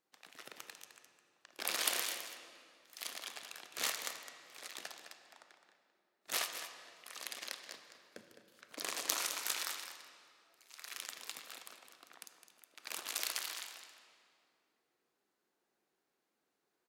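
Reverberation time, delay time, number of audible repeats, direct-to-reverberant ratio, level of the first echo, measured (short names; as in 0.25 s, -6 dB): 2.4 s, 0.21 s, 1, 5.5 dB, -10.0 dB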